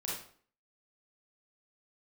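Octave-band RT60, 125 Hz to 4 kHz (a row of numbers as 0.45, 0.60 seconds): 0.50, 0.55, 0.50, 0.50, 0.45, 0.40 seconds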